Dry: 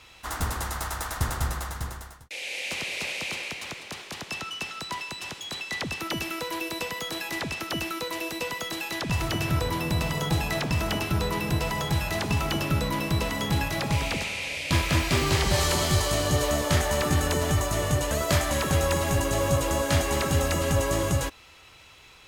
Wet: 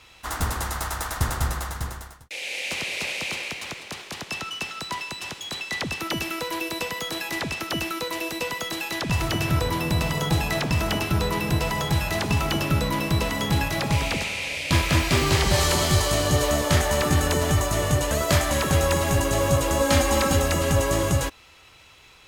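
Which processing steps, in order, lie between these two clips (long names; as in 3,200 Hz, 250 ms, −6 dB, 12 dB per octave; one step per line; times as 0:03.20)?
0:19.80–0:20.37: comb filter 3.8 ms, depth 66%
in parallel at −7.5 dB: dead-zone distortion −46 dBFS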